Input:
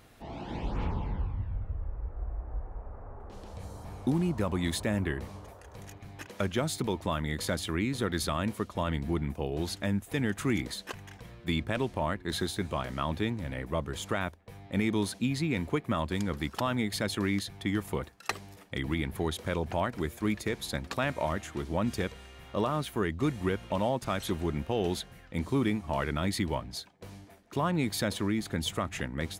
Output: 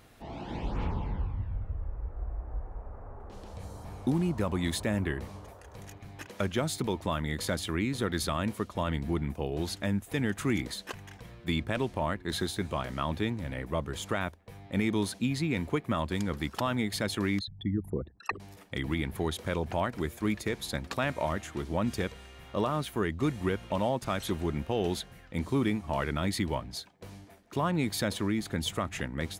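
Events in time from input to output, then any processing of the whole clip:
17.39–18.4 formant sharpening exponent 3

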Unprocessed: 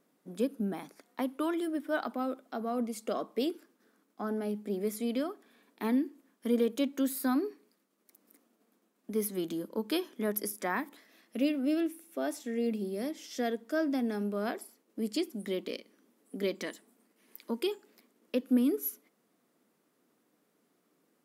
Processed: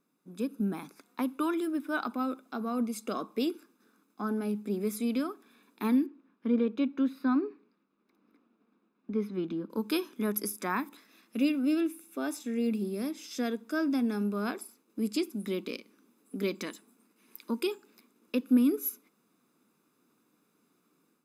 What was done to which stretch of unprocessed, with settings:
6.06–9.7 air absorption 310 m
whole clip: comb 0.8 ms, depth 53%; AGC gain up to 7 dB; gain -6 dB

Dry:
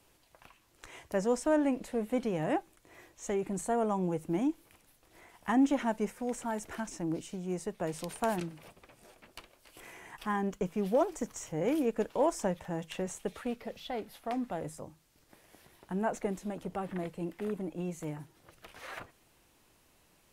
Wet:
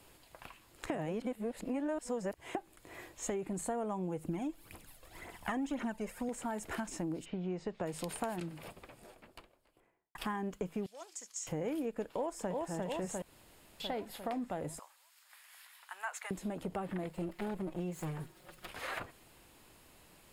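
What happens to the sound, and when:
0.9–2.55 reverse
4.24–6.29 phaser 1.9 Hz, delay 1.9 ms, feedback 56%
7.24–7.84 LPF 2900 Hz -> 7200 Hz 24 dB/oct
8.48–10.15 studio fade out
10.86–11.47 band-pass 6000 Hz, Q 1.8
12.05–12.7 echo throw 0.35 s, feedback 55%, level -3.5 dB
13.22–13.8 room tone
14.79–16.31 HPF 1100 Hz 24 dB/oct
17.09–18.69 minimum comb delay 5.5 ms
whole clip: notch 5900 Hz, Q 6.9; compressor 5:1, threshold -41 dBFS; gain +5.5 dB

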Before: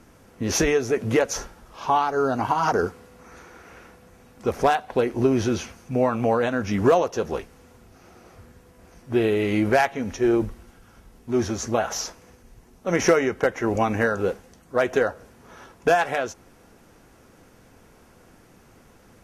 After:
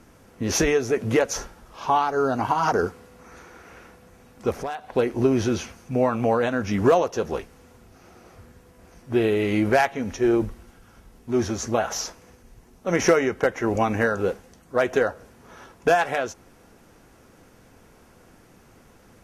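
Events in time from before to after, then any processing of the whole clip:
4.53–4.96 compressor 2:1, threshold -35 dBFS

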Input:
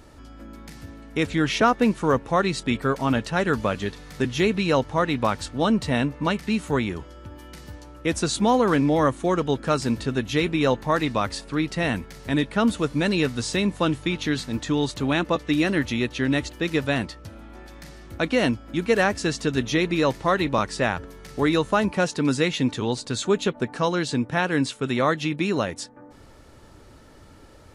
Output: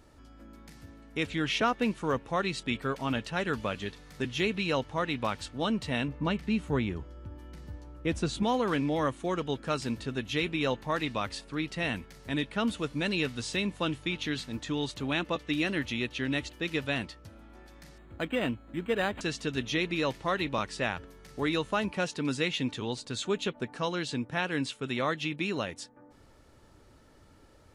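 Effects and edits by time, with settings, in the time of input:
6.08–8.43 tilt -2 dB/oct
17.98–19.21 decimation joined by straight lines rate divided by 8×
whole clip: dynamic EQ 2900 Hz, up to +7 dB, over -42 dBFS, Q 1.4; gain -9 dB

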